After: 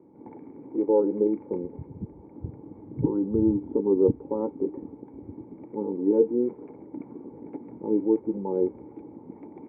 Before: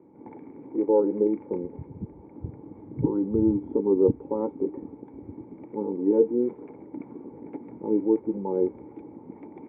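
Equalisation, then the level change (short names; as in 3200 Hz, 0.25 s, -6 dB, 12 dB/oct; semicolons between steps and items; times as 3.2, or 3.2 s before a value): high shelf 2000 Hz -9 dB; 0.0 dB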